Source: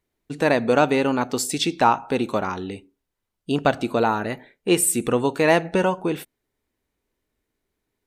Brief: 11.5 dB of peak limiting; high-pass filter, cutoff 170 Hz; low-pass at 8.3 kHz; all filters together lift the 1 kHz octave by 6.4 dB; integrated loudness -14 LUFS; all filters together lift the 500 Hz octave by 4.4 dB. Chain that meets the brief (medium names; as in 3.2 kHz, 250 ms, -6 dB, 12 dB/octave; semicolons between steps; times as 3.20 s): high-pass 170 Hz; low-pass 8.3 kHz; peaking EQ 500 Hz +3.5 dB; peaking EQ 1 kHz +7 dB; trim +8.5 dB; peak limiter -1 dBFS